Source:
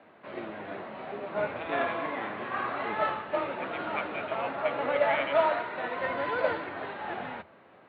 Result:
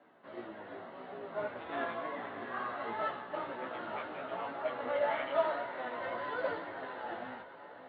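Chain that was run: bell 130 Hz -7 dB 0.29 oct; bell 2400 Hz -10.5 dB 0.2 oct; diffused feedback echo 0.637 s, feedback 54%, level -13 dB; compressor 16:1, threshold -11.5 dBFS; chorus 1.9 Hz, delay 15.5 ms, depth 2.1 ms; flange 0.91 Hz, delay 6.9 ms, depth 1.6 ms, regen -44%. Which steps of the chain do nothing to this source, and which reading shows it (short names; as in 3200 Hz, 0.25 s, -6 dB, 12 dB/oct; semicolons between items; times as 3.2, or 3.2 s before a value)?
compressor, threshold -11.5 dBFS: input peak -13.0 dBFS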